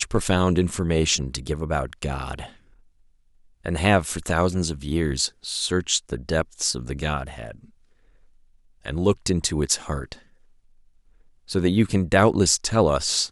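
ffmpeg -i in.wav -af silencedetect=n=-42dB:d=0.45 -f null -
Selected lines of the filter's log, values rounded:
silence_start: 2.56
silence_end: 3.64 | silence_duration: 1.08
silence_start: 7.65
silence_end: 8.85 | silence_duration: 1.20
silence_start: 10.20
silence_end: 11.48 | silence_duration: 1.28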